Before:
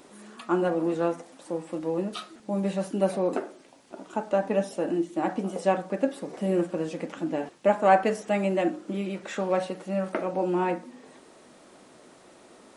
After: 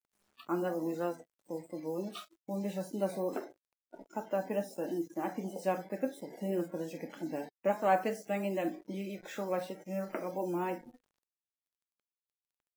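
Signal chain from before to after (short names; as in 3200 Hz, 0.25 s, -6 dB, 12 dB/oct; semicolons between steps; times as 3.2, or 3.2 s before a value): vibrato 3.1 Hz 45 cents; bit-crush 7-bit; spectral noise reduction 21 dB; gain -8.5 dB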